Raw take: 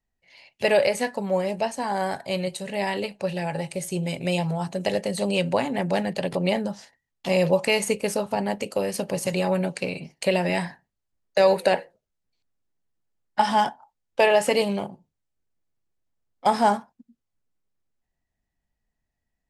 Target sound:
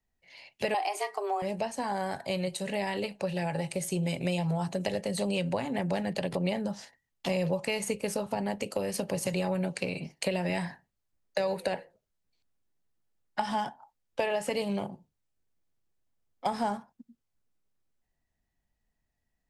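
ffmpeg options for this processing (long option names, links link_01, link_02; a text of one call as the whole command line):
ffmpeg -i in.wav -filter_complex "[0:a]asettb=1/sr,asplit=3[link_01][link_02][link_03];[link_01]atrim=end=0.744[link_04];[link_02]atrim=start=0.74:end=1.42,asetpts=PTS-STARTPTS,afade=type=in:duration=0.004:curve=qsin,afade=type=out:start_time=0.676:duration=0.004:curve=qsin,afreqshift=200[link_05];[link_03]atrim=start=1.416[link_06];[link_04][link_05]acrossfade=duration=0.004:curve1=hsin:curve2=qsin[link_07];[link_07][link_06]acrossfade=duration=0.004:curve1=qsin:curve2=hsin,acrossover=split=140[link_08][link_09];[link_09]acompressor=threshold=-29dB:ratio=4[link_10];[link_08][link_10]amix=inputs=2:normalize=0" out.wav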